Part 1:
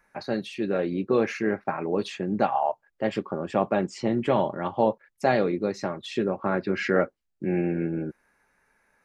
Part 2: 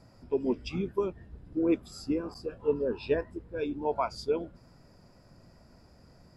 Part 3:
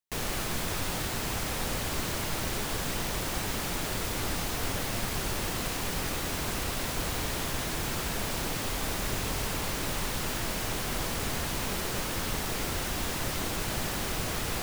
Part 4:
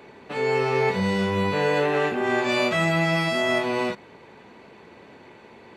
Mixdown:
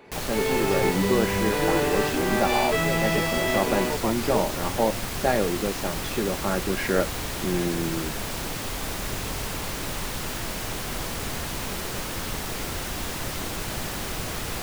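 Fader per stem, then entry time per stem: -1.0 dB, -2.0 dB, +1.0 dB, -3.0 dB; 0.00 s, 0.05 s, 0.00 s, 0.00 s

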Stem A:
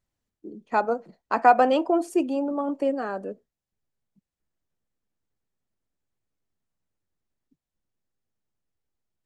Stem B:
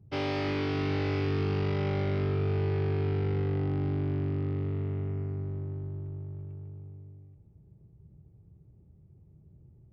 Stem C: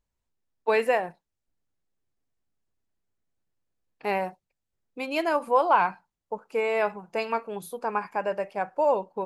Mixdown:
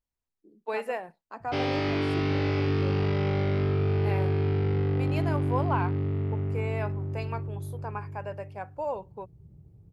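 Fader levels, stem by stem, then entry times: -17.5 dB, +3.0 dB, -9.0 dB; 0.00 s, 1.40 s, 0.00 s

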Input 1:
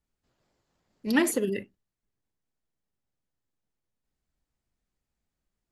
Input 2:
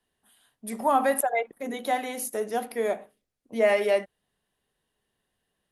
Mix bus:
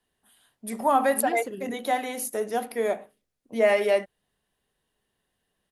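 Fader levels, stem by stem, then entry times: -9.5 dB, +1.0 dB; 0.10 s, 0.00 s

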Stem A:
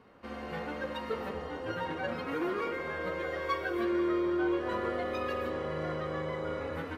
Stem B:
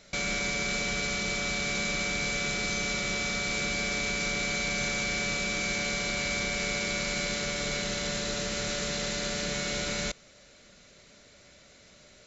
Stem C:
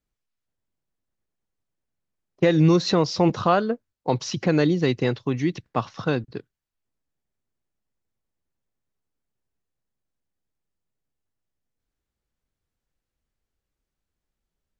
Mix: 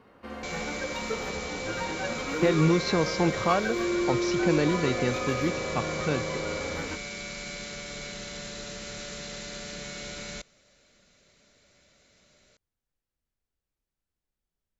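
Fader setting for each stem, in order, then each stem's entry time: +2.0 dB, -7.0 dB, -5.5 dB; 0.00 s, 0.30 s, 0.00 s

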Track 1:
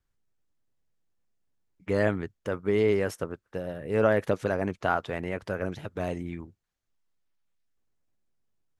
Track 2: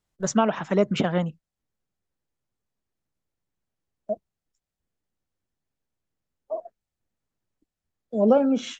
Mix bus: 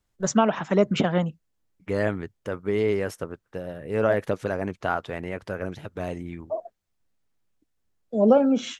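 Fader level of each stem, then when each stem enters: 0.0 dB, +1.0 dB; 0.00 s, 0.00 s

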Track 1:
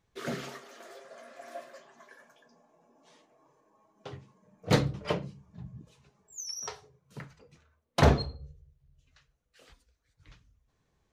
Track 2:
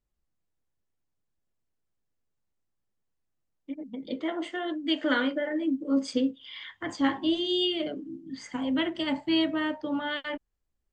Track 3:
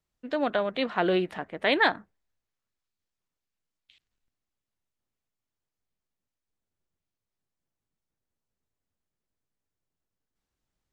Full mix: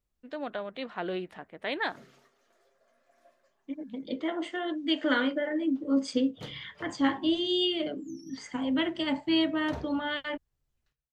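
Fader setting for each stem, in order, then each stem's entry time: -19.5 dB, -0.5 dB, -9.0 dB; 1.70 s, 0.00 s, 0.00 s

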